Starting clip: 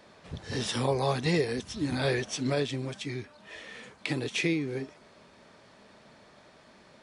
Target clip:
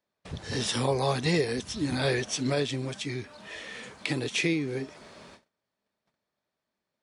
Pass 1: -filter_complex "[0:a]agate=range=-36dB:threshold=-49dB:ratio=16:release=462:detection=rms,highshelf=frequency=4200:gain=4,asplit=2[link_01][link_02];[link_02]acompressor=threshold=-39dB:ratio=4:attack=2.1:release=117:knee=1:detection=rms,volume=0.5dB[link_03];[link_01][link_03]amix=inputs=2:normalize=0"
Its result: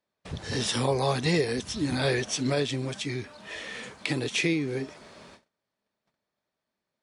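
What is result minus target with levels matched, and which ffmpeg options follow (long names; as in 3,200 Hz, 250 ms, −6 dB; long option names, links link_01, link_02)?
downward compressor: peak gain reduction −7 dB
-filter_complex "[0:a]agate=range=-36dB:threshold=-49dB:ratio=16:release=462:detection=rms,highshelf=frequency=4200:gain=4,asplit=2[link_01][link_02];[link_02]acompressor=threshold=-48dB:ratio=4:attack=2.1:release=117:knee=1:detection=rms,volume=0.5dB[link_03];[link_01][link_03]amix=inputs=2:normalize=0"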